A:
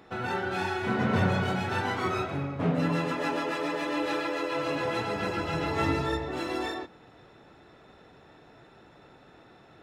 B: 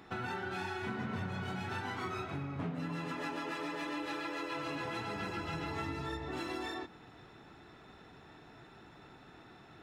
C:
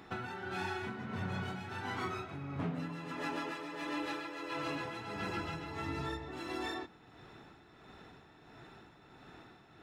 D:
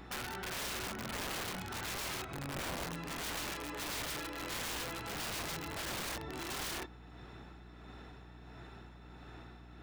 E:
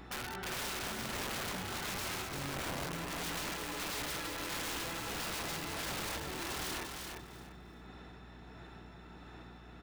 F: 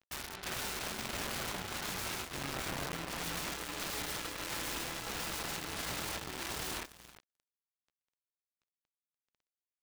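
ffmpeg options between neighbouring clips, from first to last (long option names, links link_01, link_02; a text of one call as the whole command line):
ffmpeg -i in.wav -af "equalizer=frequency=540:width_type=o:width=0.55:gain=-8,acompressor=threshold=-36dB:ratio=6" out.wav
ffmpeg -i in.wav -af "tremolo=f=1.5:d=0.52,volume=1.5dB" out.wav
ffmpeg -i in.wav -af "aeval=exprs='(mod(59.6*val(0)+1,2)-1)/59.6':channel_layout=same,aeval=exprs='val(0)+0.002*(sin(2*PI*60*n/s)+sin(2*PI*2*60*n/s)/2+sin(2*PI*3*60*n/s)/3+sin(2*PI*4*60*n/s)/4+sin(2*PI*5*60*n/s)/5)':channel_layout=same,volume=1dB" out.wav
ffmpeg -i in.wav -af "aecho=1:1:345|690|1035:0.562|0.118|0.0248" out.wav
ffmpeg -i in.wav -af "acrusher=bits=5:mix=0:aa=0.5" out.wav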